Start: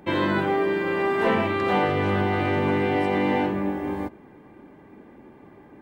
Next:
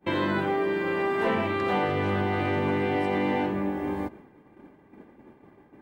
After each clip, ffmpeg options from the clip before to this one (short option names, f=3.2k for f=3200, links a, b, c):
-af "agate=range=-33dB:threshold=-40dB:ratio=3:detection=peak,acompressor=threshold=-40dB:ratio=1.5,volume=4dB"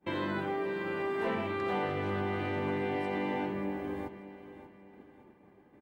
-af "aecho=1:1:585|1170|1755|2340:0.2|0.0798|0.0319|0.0128,volume=-7.5dB"